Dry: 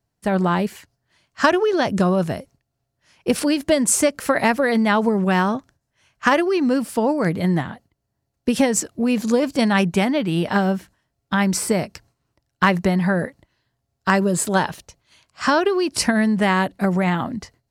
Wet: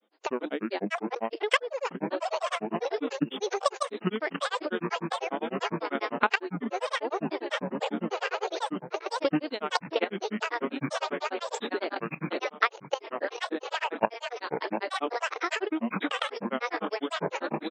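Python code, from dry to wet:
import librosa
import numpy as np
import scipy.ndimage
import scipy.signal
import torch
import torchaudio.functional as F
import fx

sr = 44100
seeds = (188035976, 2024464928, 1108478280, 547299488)

y = fx.reverse_delay_fb(x, sr, ms=330, feedback_pct=79, wet_db=-6.5)
y = fx.level_steps(y, sr, step_db=14)
y = fx.brickwall_bandpass(y, sr, low_hz=260.0, high_hz=4900.0)
y = fx.granulator(y, sr, seeds[0], grain_ms=100.0, per_s=10.0, spray_ms=100.0, spread_st=12)
y = fx.spec_box(y, sr, start_s=3.12, length_s=0.25, low_hz=620.0, high_hz=2600.0, gain_db=-10)
y = fx.band_squash(y, sr, depth_pct=70)
y = y * 10.0 ** (2.0 / 20.0)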